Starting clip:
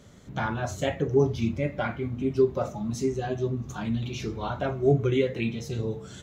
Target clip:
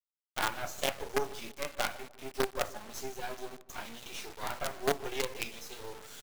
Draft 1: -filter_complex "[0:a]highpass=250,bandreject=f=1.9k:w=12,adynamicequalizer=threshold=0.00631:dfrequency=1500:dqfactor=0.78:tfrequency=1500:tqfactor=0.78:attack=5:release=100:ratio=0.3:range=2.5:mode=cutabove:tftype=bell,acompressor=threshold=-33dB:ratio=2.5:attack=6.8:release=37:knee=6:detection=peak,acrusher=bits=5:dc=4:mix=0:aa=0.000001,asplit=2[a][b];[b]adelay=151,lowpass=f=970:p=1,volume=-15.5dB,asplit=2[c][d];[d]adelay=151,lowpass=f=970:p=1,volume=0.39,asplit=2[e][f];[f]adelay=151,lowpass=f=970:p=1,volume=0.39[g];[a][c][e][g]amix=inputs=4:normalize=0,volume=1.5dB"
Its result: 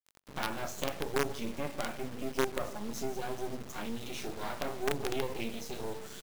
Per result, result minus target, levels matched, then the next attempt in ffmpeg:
compressor: peak gain reduction +10 dB; 250 Hz band +6.5 dB
-filter_complex "[0:a]highpass=250,bandreject=f=1.9k:w=12,adynamicequalizer=threshold=0.00631:dfrequency=1500:dqfactor=0.78:tfrequency=1500:tqfactor=0.78:attack=5:release=100:ratio=0.3:range=2.5:mode=cutabove:tftype=bell,acrusher=bits=5:dc=4:mix=0:aa=0.000001,asplit=2[a][b];[b]adelay=151,lowpass=f=970:p=1,volume=-15.5dB,asplit=2[c][d];[d]adelay=151,lowpass=f=970:p=1,volume=0.39,asplit=2[e][f];[f]adelay=151,lowpass=f=970:p=1,volume=0.39[g];[a][c][e][g]amix=inputs=4:normalize=0,volume=1.5dB"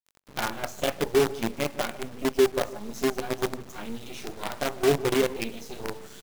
250 Hz band +5.5 dB
-filter_complex "[0:a]highpass=690,bandreject=f=1.9k:w=12,adynamicequalizer=threshold=0.00631:dfrequency=1500:dqfactor=0.78:tfrequency=1500:tqfactor=0.78:attack=5:release=100:ratio=0.3:range=2.5:mode=cutabove:tftype=bell,acrusher=bits=5:dc=4:mix=0:aa=0.000001,asplit=2[a][b];[b]adelay=151,lowpass=f=970:p=1,volume=-15.5dB,asplit=2[c][d];[d]adelay=151,lowpass=f=970:p=1,volume=0.39,asplit=2[e][f];[f]adelay=151,lowpass=f=970:p=1,volume=0.39[g];[a][c][e][g]amix=inputs=4:normalize=0,volume=1.5dB"

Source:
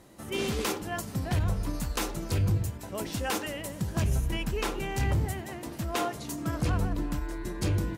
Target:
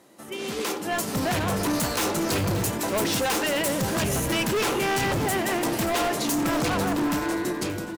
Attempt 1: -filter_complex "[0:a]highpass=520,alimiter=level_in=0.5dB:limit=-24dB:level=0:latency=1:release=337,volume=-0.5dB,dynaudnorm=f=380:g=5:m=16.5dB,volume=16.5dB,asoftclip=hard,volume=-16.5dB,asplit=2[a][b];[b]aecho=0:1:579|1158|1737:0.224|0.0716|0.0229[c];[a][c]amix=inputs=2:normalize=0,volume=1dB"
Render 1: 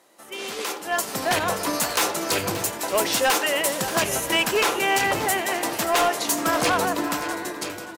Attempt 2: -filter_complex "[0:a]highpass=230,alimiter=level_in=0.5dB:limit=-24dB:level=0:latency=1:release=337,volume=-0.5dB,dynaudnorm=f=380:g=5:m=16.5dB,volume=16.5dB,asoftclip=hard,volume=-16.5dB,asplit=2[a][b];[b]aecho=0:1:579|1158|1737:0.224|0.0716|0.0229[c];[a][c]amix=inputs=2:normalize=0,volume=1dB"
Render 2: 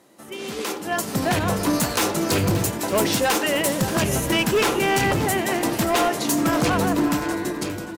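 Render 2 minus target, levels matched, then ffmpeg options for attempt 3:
overloaded stage: distortion -7 dB
-filter_complex "[0:a]highpass=230,alimiter=level_in=0.5dB:limit=-24dB:level=0:latency=1:release=337,volume=-0.5dB,dynaudnorm=f=380:g=5:m=16.5dB,volume=23.5dB,asoftclip=hard,volume=-23.5dB,asplit=2[a][b];[b]aecho=0:1:579|1158|1737:0.224|0.0716|0.0229[c];[a][c]amix=inputs=2:normalize=0,volume=1dB"

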